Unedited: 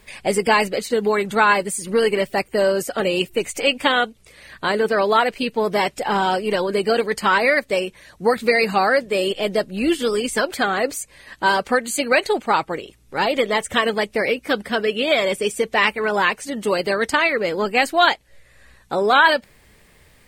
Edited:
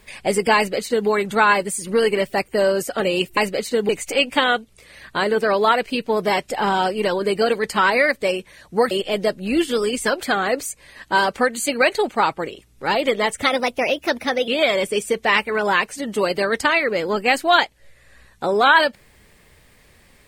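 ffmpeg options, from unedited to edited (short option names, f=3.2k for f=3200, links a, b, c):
-filter_complex "[0:a]asplit=6[a][b][c][d][e][f];[a]atrim=end=3.372[g];[b]atrim=start=0.558:end=1.082[h];[c]atrim=start=3.368:end=8.392[i];[d]atrim=start=9.218:end=13.734[j];[e]atrim=start=13.73:end=14.97,asetpts=PTS-STARTPTS,asetrate=51597,aresample=44100,atrim=end_sample=46738,asetpts=PTS-STARTPTS[k];[f]atrim=start=14.966[l];[g][h]acrossfade=d=0.004:c1=hsin:c2=hsin[m];[m][i]acrossfade=d=0.004:c1=hsin:c2=hsin[n];[n][j]acrossfade=d=0.004:c1=hsin:c2=hsin[o];[o][k]acrossfade=d=0.004:c1=hsin:c2=hsin[p];[p][l]acrossfade=d=0.004:c1=hsin:c2=hsin"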